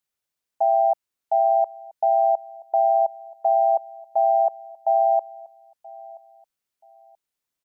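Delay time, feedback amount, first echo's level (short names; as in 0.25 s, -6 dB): 0.979 s, 26%, -22.0 dB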